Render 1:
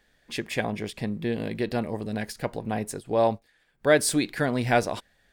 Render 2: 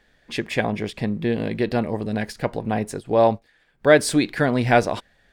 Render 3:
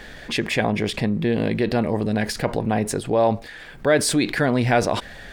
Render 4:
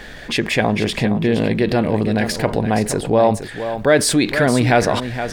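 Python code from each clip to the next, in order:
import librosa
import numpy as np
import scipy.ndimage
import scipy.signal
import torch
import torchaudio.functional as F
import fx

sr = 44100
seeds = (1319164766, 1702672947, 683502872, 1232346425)

y1 = fx.high_shelf(x, sr, hz=6900.0, db=-10.5)
y1 = F.gain(torch.from_numpy(y1), 5.5).numpy()
y2 = fx.env_flatten(y1, sr, amount_pct=50)
y2 = F.gain(torch.from_numpy(y2), -4.5).numpy()
y3 = y2 + 10.0 ** (-10.0 / 20.0) * np.pad(y2, (int(468 * sr / 1000.0), 0))[:len(y2)]
y3 = F.gain(torch.from_numpy(y3), 4.0).numpy()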